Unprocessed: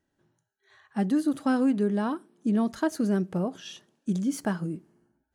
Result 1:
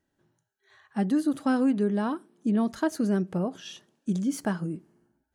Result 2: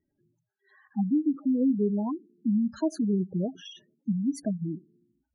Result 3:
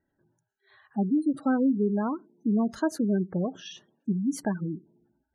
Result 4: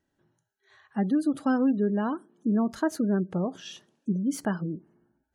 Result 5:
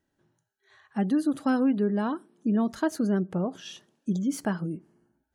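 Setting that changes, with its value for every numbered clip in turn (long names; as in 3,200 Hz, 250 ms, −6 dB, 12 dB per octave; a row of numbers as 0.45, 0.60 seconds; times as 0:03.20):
gate on every frequency bin, under each frame's peak: −60, −10, −20, −35, −45 decibels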